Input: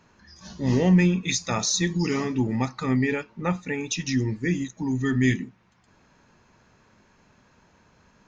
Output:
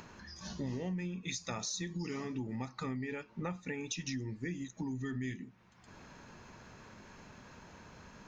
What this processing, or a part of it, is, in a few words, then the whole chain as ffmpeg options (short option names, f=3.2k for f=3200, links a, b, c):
upward and downward compression: -af "acompressor=mode=upward:threshold=-43dB:ratio=2.5,acompressor=threshold=-34dB:ratio=8,volume=-2dB"